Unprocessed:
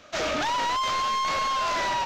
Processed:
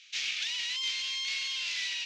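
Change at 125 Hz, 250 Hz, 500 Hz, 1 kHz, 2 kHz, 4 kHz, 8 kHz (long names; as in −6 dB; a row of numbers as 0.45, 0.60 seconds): below −25 dB, below −30 dB, below −35 dB, −33.0 dB, −4.0 dB, +1.5 dB, −1.5 dB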